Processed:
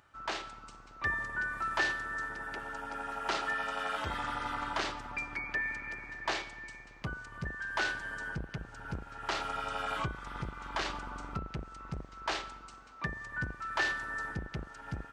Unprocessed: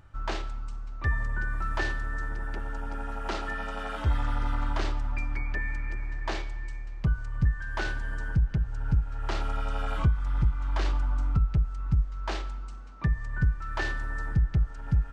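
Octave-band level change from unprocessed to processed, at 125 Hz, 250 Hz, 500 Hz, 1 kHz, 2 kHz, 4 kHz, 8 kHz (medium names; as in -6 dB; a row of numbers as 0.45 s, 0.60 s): -15.5 dB, -7.0 dB, -2.0 dB, +1.0 dB, +2.0 dB, +2.5 dB, no reading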